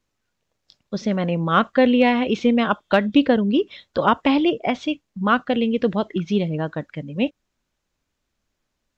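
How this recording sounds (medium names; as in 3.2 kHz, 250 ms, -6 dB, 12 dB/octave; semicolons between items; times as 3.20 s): noise floor -78 dBFS; spectral tilt -4.5 dB/octave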